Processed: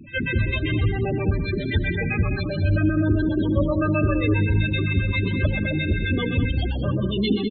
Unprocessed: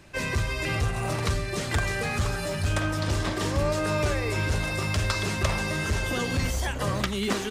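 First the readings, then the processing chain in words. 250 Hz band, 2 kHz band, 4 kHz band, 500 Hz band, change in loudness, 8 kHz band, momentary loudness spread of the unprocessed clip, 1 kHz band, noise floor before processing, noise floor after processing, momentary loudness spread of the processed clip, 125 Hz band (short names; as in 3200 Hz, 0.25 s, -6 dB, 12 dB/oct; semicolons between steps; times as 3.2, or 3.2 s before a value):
+9.0 dB, +2.0 dB, -0.5 dB, +3.0 dB, +4.5 dB, under -40 dB, 2 LU, -4.0 dB, -31 dBFS, -27 dBFS, 4 LU, +6.0 dB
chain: flange 0.27 Hz, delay 8.7 ms, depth 2.8 ms, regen +72%; LFO low-pass square 7.6 Hz 310–3700 Hz; pre-echo 0.194 s -18.5 dB; loudest bins only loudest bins 16; on a send: loudspeakers at several distances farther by 43 m -10 dB, 69 m -10 dB; on the sum: gain +8.5 dB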